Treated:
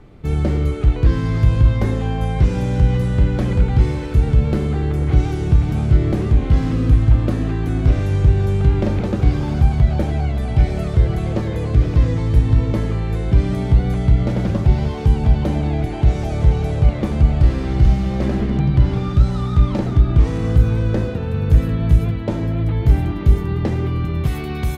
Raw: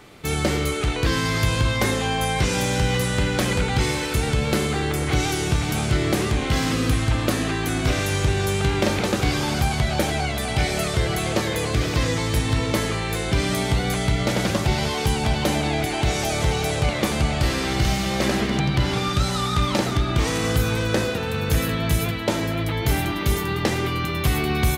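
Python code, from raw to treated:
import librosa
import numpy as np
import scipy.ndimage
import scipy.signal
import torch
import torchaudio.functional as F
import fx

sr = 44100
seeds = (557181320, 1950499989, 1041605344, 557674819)

y = fx.tilt_eq(x, sr, slope=fx.steps((0.0, -4.0), (24.25, -1.5)))
y = y * 10.0 ** (-5.5 / 20.0)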